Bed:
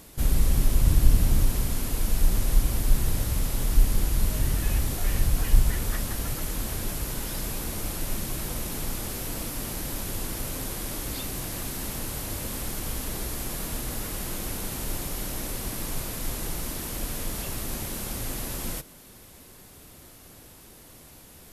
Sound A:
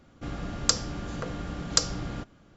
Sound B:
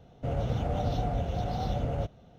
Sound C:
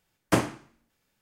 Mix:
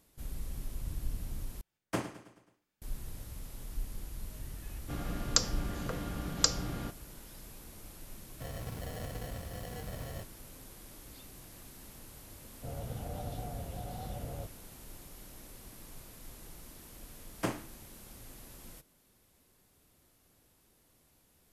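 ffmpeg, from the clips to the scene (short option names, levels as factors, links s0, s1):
-filter_complex "[3:a]asplit=2[s0][s1];[2:a]asplit=2[s2][s3];[0:a]volume=0.119[s4];[s0]aecho=1:1:107|214|321|428|535:0.2|0.104|0.054|0.0281|0.0146[s5];[s2]acrusher=samples=36:mix=1:aa=0.000001[s6];[s4]asplit=2[s7][s8];[s7]atrim=end=1.614[s9];[s5]atrim=end=1.21,asetpts=PTS-STARTPTS,volume=0.266[s10];[s8]atrim=start=2.816[s11];[1:a]atrim=end=2.56,asetpts=PTS-STARTPTS,volume=0.668,afade=t=in:d=0.004:c=hsin,afade=t=out:st=2.556:d=0.004:c=hsin,adelay=4670[s12];[s6]atrim=end=2.38,asetpts=PTS-STARTPTS,volume=0.251,afade=t=in:d=0.004:c=hsin,afade=t=out:st=2.376:d=0.004:c=hsin,adelay=8170[s13];[s3]atrim=end=2.38,asetpts=PTS-STARTPTS,volume=0.282,afade=t=in:d=0.004:c=hsin,afade=t=out:st=2.376:d=0.004:c=hsin,adelay=12400[s14];[s1]atrim=end=1.21,asetpts=PTS-STARTPTS,volume=0.282,afade=t=in:d=0.004:c=hsin,afade=t=out:st=1.206:d=0.004:c=hsin,adelay=17110[s15];[s9][s10]acrossfade=d=0.004:c1=hsin:c2=hsin[s16];[s16][s11]acrossfade=d=0.004:c1=hsin:c2=hsin[s17];[s17][s12][s13][s14][s15]amix=inputs=5:normalize=0"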